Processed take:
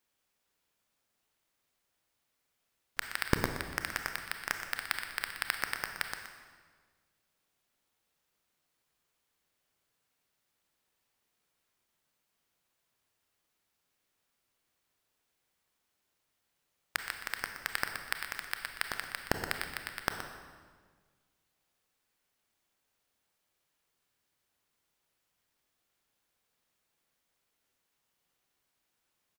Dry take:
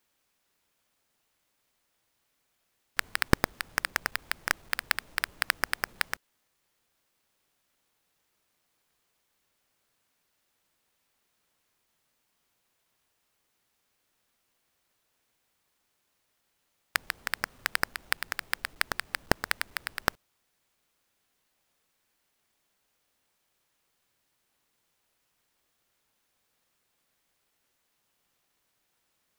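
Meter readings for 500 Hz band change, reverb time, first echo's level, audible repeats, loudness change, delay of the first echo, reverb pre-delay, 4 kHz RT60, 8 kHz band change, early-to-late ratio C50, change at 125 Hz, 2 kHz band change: -4.5 dB, 1.6 s, -11.5 dB, 1, -5.0 dB, 122 ms, 26 ms, 1.3 s, -5.0 dB, 5.5 dB, -4.0 dB, -5.0 dB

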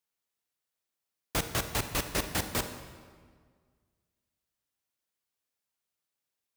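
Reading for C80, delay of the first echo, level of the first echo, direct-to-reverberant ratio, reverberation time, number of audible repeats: 10.5 dB, no echo, no echo, 8.0 dB, 1.8 s, no echo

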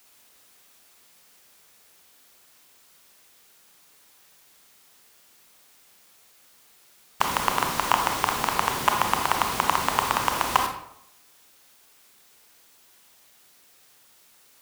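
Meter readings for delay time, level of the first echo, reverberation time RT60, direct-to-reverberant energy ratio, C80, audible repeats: no echo, no echo, 0.70 s, 4.0 dB, 10.0 dB, no echo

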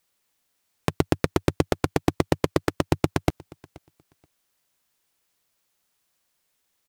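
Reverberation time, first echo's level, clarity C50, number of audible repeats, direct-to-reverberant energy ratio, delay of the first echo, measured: no reverb, -24.0 dB, no reverb, 1, no reverb, 478 ms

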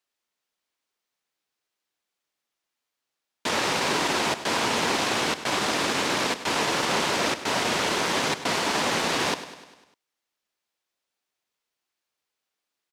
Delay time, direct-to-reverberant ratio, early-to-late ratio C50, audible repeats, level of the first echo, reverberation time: 100 ms, no reverb, no reverb, 5, -13.5 dB, no reverb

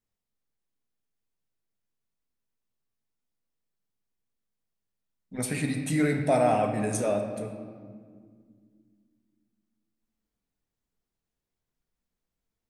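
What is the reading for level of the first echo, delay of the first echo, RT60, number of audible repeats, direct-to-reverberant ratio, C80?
no echo, no echo, 2.1 s, no echo, 4.0 dB, 7.5 dB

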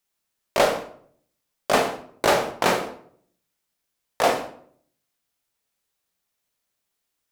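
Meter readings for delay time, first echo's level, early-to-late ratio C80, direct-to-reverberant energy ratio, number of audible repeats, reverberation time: no echo, no echo, 13.0 dB, 3.5 dB, no echo, 0.60 s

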